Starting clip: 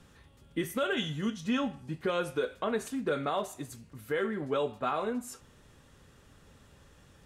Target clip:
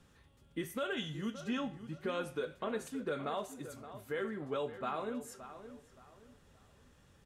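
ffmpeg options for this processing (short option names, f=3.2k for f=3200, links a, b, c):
-filter_complex "[0:a]asplit=2[a][b];[b]adelay=571,lowpass=f=2.6k:p=1,volume=-12dB,asplit=2[c][d];[d]adelay=571,lowpass=f=2.6k:p=1,volume=0.32,asplit=2[e][f];[f]adelay=571,lowpass=f=2.6k:p=1,volume=0.32[g];[a][c][e][g]amix=inputs=4:normalize=0,volume=-6.5dB"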